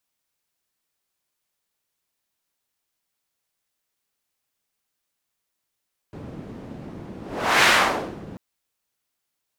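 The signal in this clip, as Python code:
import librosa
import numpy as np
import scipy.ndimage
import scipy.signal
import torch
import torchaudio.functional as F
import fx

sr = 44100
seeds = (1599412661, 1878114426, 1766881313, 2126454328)

y = fx.whoosh(sr, seeds[0], length_s=2.24, peak_s=1.53, rise_s=0.49, fall_s=0.6, ends_hz=230.0, peak_hz=1900.0, q=1.0, swell_db=22)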